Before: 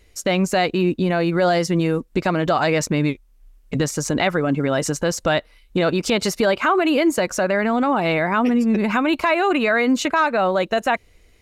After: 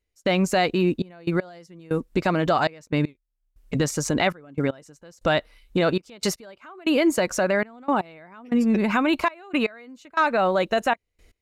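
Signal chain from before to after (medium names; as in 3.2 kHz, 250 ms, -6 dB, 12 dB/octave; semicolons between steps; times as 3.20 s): trance gate "..xxxxxx..x.." 118 bpm -24 dB; trim -2 dB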